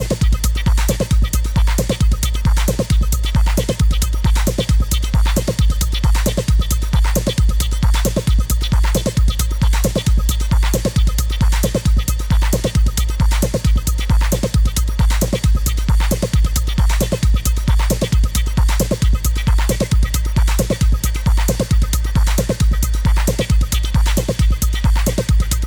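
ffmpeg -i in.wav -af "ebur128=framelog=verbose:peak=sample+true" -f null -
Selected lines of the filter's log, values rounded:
Integrated loudness:
  I:         -17.3 LUFS
  Threshold: -27.3 LUFS
Loudness range:
  LRA:         0.2 LU
  Threshold: -37.3 LUFS
  LRA low:   -17.4 LUFS
  LRA high:  -17.2 LUFS
Sample peak:
  Peak:       -6.0 dBFS
True peak:
  Peak:       -5.9 dBFS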